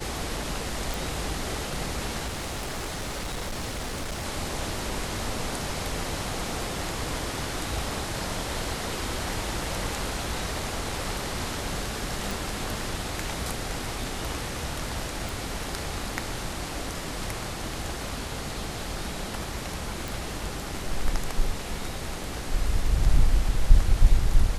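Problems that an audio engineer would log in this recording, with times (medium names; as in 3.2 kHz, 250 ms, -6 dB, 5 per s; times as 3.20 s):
0.94 s: pop
2.26–4.25 s: clipped -28.5 dBFS
12.31 s: pop
15.29 s: pop
20.08 s: pop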